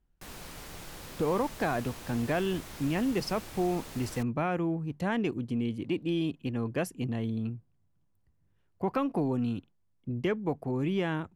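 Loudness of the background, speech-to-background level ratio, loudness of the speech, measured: -44.5 LUFS, 12.5 dB, -32.0 LUFS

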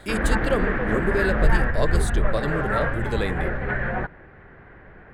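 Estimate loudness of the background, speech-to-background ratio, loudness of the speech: -25.0 LUFS, -3.0 dB, -28.0 LUFS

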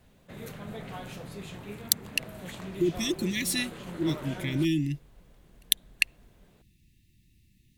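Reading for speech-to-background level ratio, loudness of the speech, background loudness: 12.0 dB, -29.5 LUFS, -41.5 LUFS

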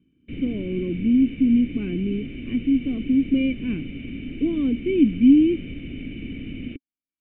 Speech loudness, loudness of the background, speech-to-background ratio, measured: -22.0 LUFS, -35.0 LUFS, 13.0 dB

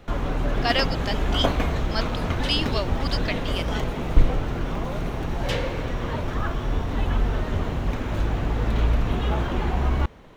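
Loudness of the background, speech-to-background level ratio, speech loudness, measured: -26.5 LUFS, -2.5 dB, -29.0 LUFS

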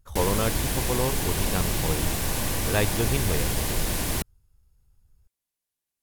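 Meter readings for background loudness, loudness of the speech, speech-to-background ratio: -27.0 LUFS, -30.0 LUFS, -3.0 dB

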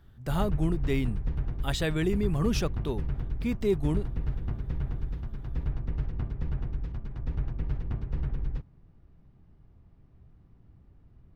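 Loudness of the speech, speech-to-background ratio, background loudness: -30.5 LUFS, 4.5 dB, -35.0 LUFS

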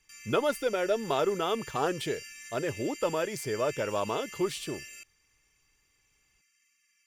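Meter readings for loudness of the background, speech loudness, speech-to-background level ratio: -44.0 LUFS, -31.0 LUFS, 13.0 dB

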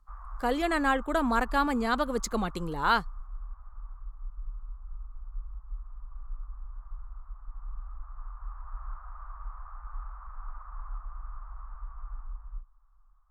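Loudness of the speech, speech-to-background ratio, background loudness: -28.5 LUFS, 17.0 dB, -45.5 LUFS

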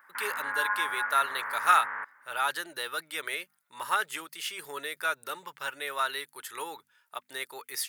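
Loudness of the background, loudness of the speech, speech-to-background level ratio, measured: -32.5 LUFS, -31.5 LUFS, 1.0 dB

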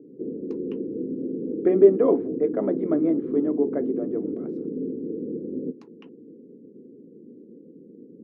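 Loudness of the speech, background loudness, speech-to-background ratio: -22.5 LUFS, -31.0 LUFS, 8.5 dB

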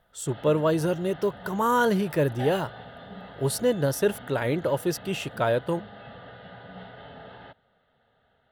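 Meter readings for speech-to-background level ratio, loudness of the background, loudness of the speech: 17.5 dB, -43.5 LUFS, -26.0 LUFS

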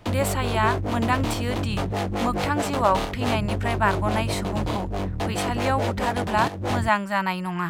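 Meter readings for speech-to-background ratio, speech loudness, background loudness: 1.0 dB, -26.5 LUFS, -27.5 LUFS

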